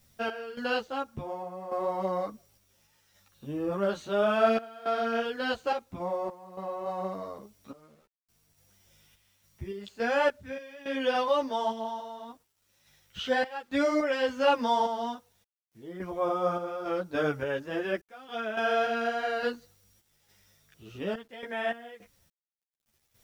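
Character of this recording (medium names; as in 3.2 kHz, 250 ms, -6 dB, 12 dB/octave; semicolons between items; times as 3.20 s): random-step tremolo, depth 95%; a quantiser's noise floor 12-bit, dither none; a shimmering, thickened sound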